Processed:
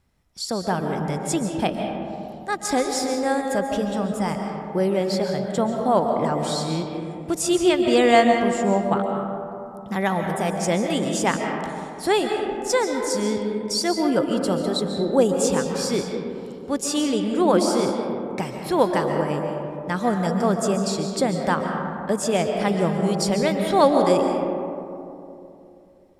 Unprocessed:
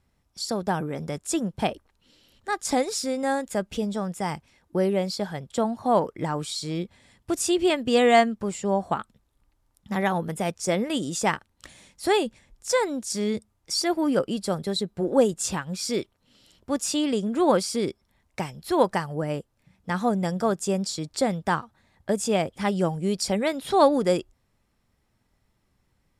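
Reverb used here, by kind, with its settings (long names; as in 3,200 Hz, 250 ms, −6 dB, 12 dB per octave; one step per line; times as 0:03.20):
comb and all-pass reverb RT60 2.9 s, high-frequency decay 0.3×, pre-delay 100 ms, DRR 3 dB
level +1.5 dB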